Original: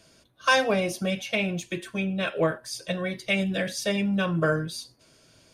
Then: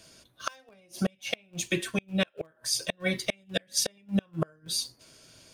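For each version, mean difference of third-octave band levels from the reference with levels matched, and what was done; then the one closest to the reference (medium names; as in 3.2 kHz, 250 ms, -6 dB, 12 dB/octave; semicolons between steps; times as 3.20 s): 12.0 dB: inverted gate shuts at -18 dBFS, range -34 dB; treble shelf 2.7 kHz +5.5 dB; in parallel at -8.5 dB: small samples zeroed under -46 dBFS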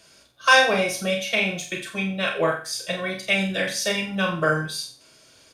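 4.5 dB: bass shelf 410 Hz -9.5 dB; doubling 32 ms -6.5 dB; flutter echo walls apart 7.9 m, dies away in 0.39 s; trim +4.5 dB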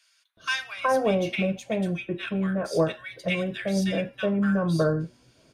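9.5 dB: treble shelf 2.6 kHz -9 dB; in parallel at -9.5 dB: saturation -19 dBFS, distortion -16 dB; on the sum: bands offset in time highs, lows 370 ms, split 1.4 kHz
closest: second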